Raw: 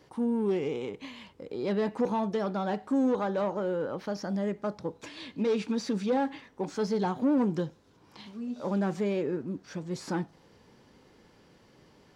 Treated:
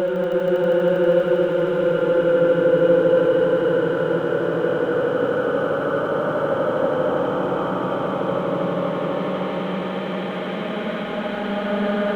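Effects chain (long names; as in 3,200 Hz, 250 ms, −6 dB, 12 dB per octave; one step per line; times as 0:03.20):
Butterworth low-pass 3,500 Hz 72 dB per octave
high-shelf EQ 2,300 Hz +9.5 dB
extreme stretch with random phases 34×, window 0.25 s, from 0:03.72
leveller curve on the samples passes 1
on a send: echo that builds up and dies away 80 ms, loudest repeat 5, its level −8 dB
on the sum: level +5 dB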